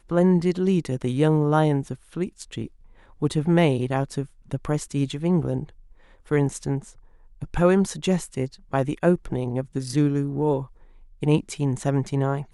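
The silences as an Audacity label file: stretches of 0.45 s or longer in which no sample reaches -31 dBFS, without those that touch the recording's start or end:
2.660000	3.220000	silence
5.640000	6.310000	silence
6.790000	7.420000	silence
10.640000	11.230000	silence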